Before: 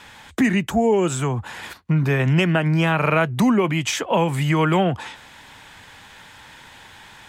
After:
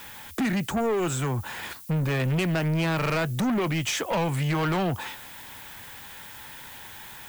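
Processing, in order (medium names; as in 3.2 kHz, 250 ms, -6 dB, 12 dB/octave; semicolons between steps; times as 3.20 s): added noise violet -45 dBFS; saturation -21 dBFS, distortion -9 dB; trim -1 dB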